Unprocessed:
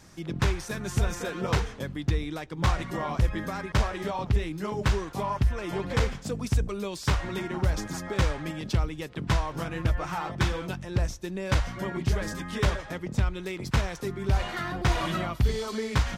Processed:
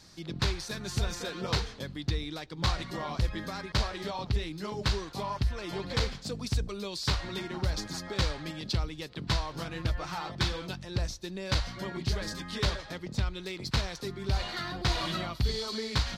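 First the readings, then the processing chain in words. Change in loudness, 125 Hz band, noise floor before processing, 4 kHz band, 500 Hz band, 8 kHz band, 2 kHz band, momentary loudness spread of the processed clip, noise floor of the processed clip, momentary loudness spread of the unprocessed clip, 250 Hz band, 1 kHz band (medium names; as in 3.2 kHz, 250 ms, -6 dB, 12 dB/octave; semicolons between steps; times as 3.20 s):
-3.5 dB, -5.0 dB, -43 dBFS, +4.0 dB, -5.0 dB, -1.5 dB, -4.0 dB, 6 LU, -47 dBFS, 5 LU, -5.0 dB, -4.5 dB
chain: peaking EQ 4.3 kHz +14 dB 0.64 oct; trim -5 dB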